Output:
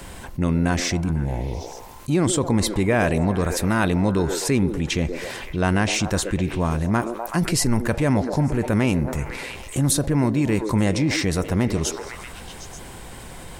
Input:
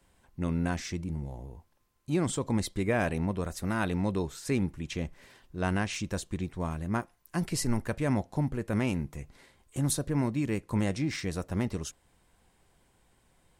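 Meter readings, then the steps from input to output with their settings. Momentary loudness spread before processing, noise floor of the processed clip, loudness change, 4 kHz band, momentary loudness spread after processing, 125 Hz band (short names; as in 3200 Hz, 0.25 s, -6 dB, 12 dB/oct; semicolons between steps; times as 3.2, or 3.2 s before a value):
10 LU, -38 dBFS, +9.5 dB, +12.5 dB, 15 LU, +9.5 dB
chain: delay with a stepping band-pass 0.126 s, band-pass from 410 Hz, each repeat 0.7 oct, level -9 dB; fast leveller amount 50%; gain +6.5 dB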